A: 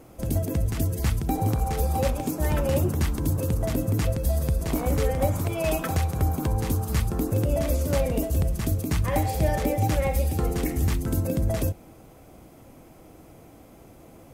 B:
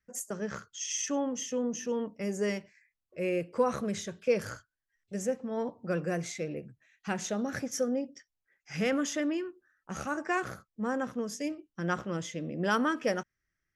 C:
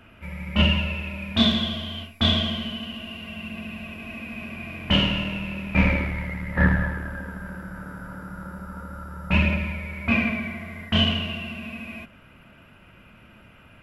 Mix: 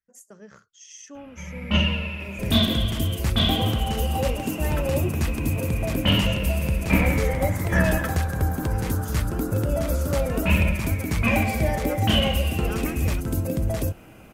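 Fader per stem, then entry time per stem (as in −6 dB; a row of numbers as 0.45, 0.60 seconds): 0.0, −10.5, −1.5 decibels; 2.20, 0.00, 1.15 seconds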